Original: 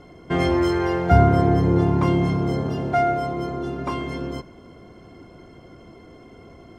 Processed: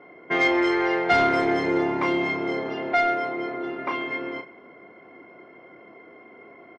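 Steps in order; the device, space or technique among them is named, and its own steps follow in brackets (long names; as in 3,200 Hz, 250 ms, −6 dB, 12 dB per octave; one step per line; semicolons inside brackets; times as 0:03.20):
low-pass that shuts in the quiet parts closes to 1,700 Hz, open at −13.5 dBFS
intercom (band-pass filter 360–4,900 Hz; parametric band 2,100 Hz +11 dB 0.49 octaves; soft clipping −11.5 dBFS, distortion −21 dB; double-tracking delay 32 ms −8.5 dB)
0:01.09–0:01.78: high-shelf EQ 2,900 Hz +9 dB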